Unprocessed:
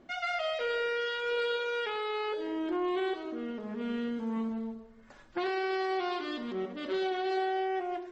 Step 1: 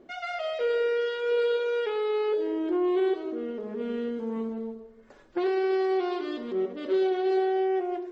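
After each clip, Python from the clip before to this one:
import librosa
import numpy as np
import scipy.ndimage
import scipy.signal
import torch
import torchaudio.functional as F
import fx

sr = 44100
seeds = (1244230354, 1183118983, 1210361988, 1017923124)

y = fx.peak_eq(x, sr, hz=420.0, db=11.5, octaves=0.96)
y = F.gain(torch.from_numpy(y), -2.5).numpy()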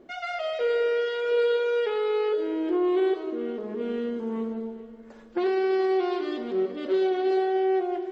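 y = fx.echo_feedback(x, sr, ms=422, feedback_pct=48, wet_db=-16)
y = F.gain(torch.from_numpy(y), 1.5).numpy()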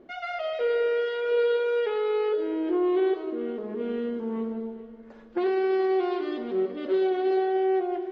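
y = fx.air_absorb(x, sr, metres=130.0)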